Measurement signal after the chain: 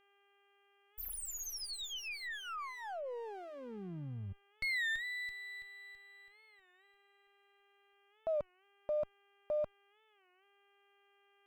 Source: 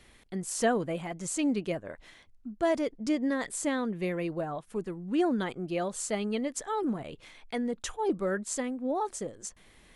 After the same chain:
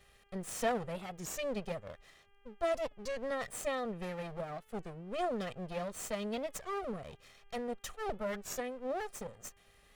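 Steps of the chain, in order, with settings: minimum comb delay 1.6 ms; buzz 400 Hz, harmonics 8, -66 dBFS -2 dB/oct; record warp 33 1/3 rpm, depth 160 cents; gain -5.5 dB

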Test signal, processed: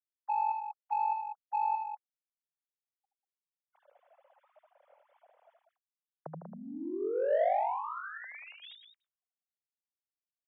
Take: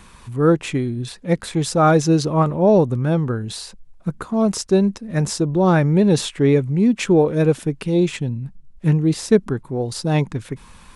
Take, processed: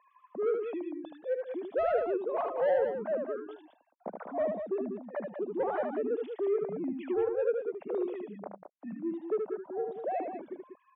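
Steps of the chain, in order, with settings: sine-wave speech; reverb removal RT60 0.64 s; in parallel at -1.5 dB: limiter -13 dBFS; on the sum: compressor 1.5:1, threshold -25 dBFS; band-pass 620 Hz, Q 2.5; soft clip -17 dBFS; on a send: loudspeakers at several distances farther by 26 m -5 dB, 66 m -8 dB; on the sum: gain -6 dB

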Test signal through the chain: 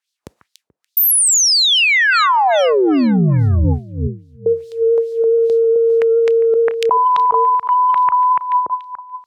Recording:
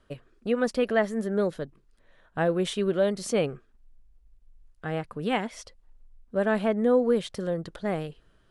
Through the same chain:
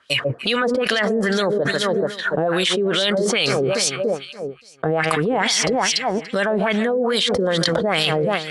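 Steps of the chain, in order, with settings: spectral noise reduction 9 dB; HPF 63 Hz 24 dB/oct; gate with hold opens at -58 dBFS; tone controls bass +9 dB, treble +10 dB; limiter -18 dBFS; echo with dull and thin repeats by turns 0.144 s, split 2000 Hz, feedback 58%, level -13.5 dB; LFO band-pass sine 2.4 Hz 420–4200 Hz; added harmonics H 3 -35 dB, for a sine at -16 dBFS; fast leveller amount 100%; gain +8 dB

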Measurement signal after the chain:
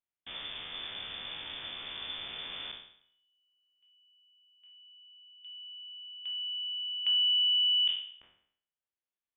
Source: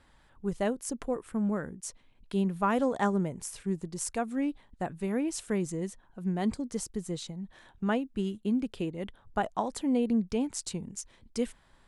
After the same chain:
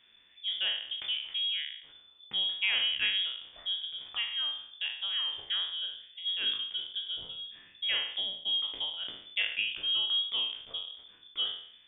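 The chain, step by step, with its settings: spectral trails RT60 0.64 s; inverted band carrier 3500 Hz; gain -3.5 dB

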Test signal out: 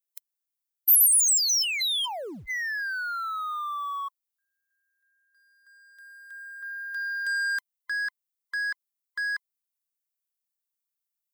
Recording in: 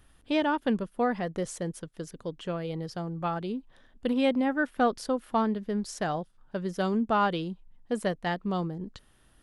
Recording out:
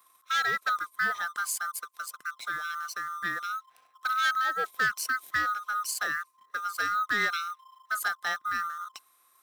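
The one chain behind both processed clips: band-swap scrambler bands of 1000 Hz; sample leveller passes 1; RIAA curve recording; gain -6 dB

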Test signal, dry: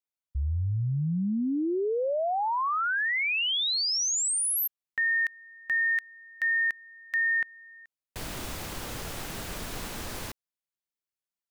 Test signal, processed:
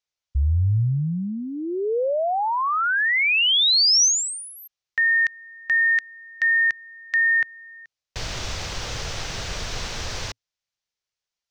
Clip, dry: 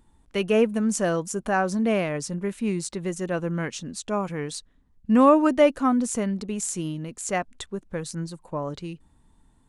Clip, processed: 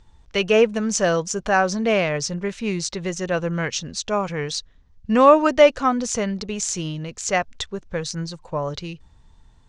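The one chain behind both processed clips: EQ curve 110 Hz 0 dB, 270 Hz -12 dB, 470 Hz -3 dB, 1000 Hz -4 dB, 6000 Hz +3 dB, 11000 Hz -23 dB; gain +8.5 dB

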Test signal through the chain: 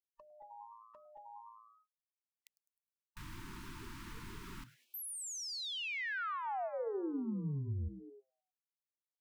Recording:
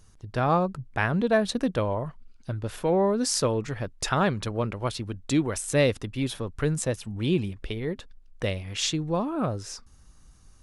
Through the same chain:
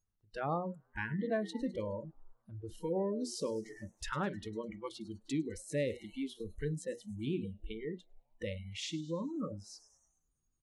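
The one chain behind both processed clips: high shelf 3000 Hz -11.5 dB; notches 60/120/180/240/300/360/420/480/540/600 Hz; frequency-shifting echo 0.103 s, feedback 59%, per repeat +110 Hz, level -15 dB; dynamic EQ 1000 Hz, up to -5 dB, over -48 dBFS, Q 6.8; spectral noise reduction 29 dB; compressor 1.5:1, threshold -50 dBFS

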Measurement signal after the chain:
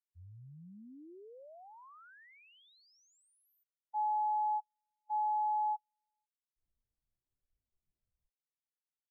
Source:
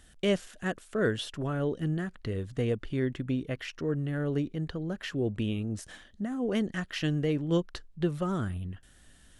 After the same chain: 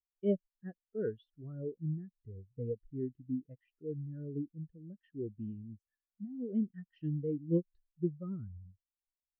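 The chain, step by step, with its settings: spectral expander 2.5:1; gain -5 dB

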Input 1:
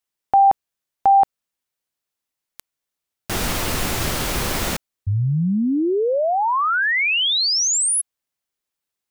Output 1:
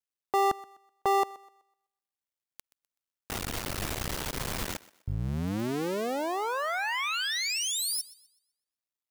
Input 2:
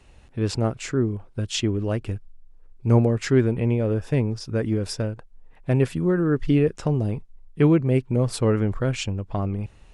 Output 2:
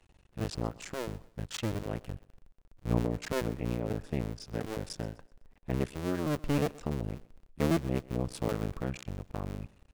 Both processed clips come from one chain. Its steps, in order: cycle switcher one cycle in 2, muted; thinning echo 0.126 s, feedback 34%, high-pass 230 Hz, level -20 dB; gain -8.5 dB

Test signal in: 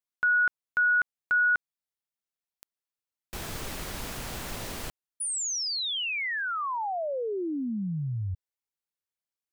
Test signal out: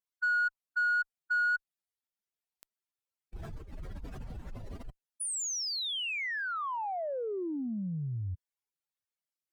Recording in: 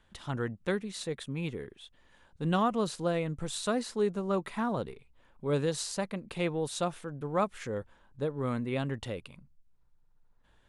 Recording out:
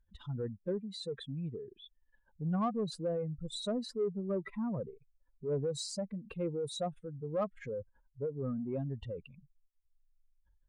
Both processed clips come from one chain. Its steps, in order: spectral contrast raised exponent 2.5; wow and flutter 2.1 Hz 18 cents; added harmonics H 2 -39 dB, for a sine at -19 dBFS; in parallel at -4.5 dB: soft clip -27.5 dBFS; on the sum: gain -7 dB

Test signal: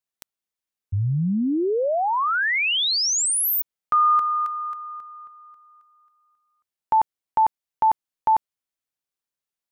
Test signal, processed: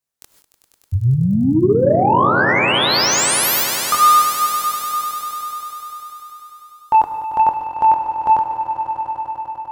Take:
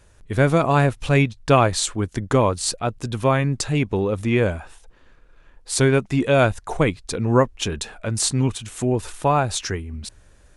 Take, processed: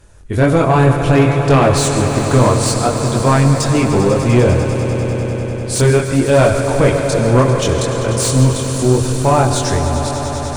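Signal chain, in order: non-linear reverb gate 0.18 s rising, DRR 11 dB; chorus voices 2, 0.6 Hz, delay 23 ms, depth 1.6 ms; tone controls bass 0 dB, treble +9 dB; in parallel at -8.5 dB: sine folder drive 10 dB, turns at -5 dBFS; on the sum: high shelf 2400 Hz -10.5 dB; on a send: swelling echo 99 ms, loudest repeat 5, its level -13 dB; on the sum: gain +2 dB

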